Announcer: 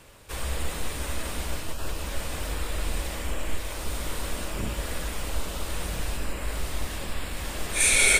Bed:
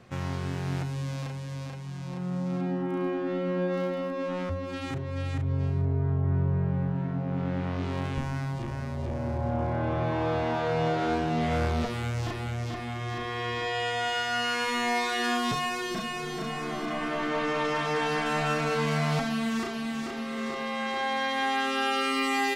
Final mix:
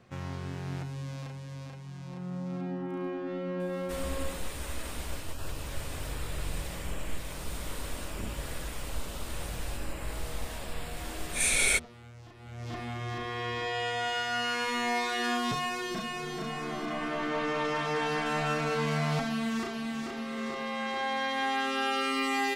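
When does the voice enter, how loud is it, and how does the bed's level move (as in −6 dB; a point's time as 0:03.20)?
3.60 s, −6.0 dB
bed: 0:04.21 −5.5 dB
0:04.47 −19 dB
0:12.34 −19 dB
0:12.75 −2.5 dB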